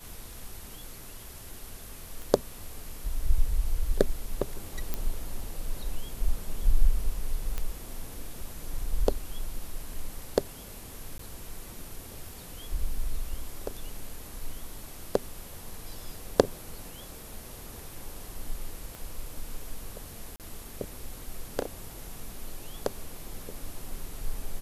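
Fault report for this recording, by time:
2.22 s: pop
4.94 s: pop -15 dBFS
7.58 s: pop -17 dBFS
11.18–11.19 s: dropout 13 ms
18.95 s: pop -26 dBFS
20.36–20.40 s: dropout 38 ms

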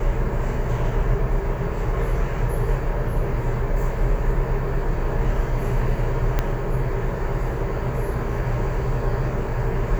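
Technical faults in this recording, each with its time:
6.39 s: pop -8 dBFS

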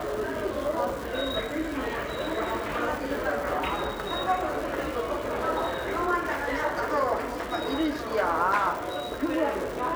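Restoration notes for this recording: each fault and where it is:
crackle 350 per s -33 dBFS

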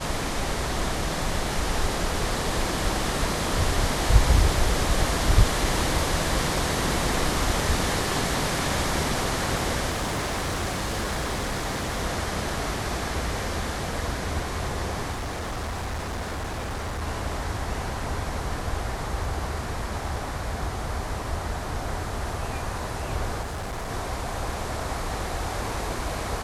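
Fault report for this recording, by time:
9.90–12.02 s: clipped -23.5 dBFS
15.11–17.03 s: clipped -27 dBFS
23.41–23.90 s: clipped -28.5 dBFS

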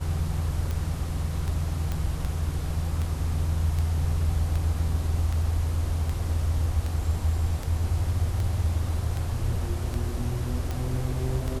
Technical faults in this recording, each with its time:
tick 78 rpm -18 dBFS
1.92 s: pop -17 dBFS

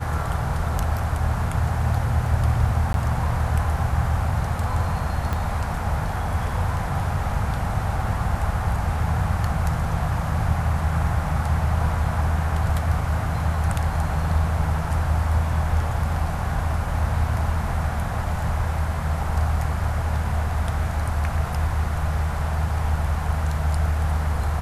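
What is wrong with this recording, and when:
2.93–2.94 s: dropout 12 ms
5.33 s: pop -13 dBFS

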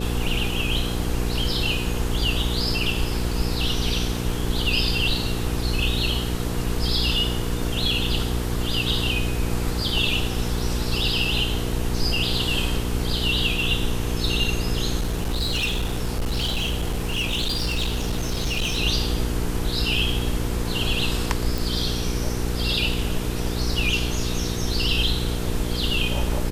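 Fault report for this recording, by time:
hum 60 Hz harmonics 8 -27 dBFS
14.98–18.79 s: clipped -20 dBFS
21.58 s: pop

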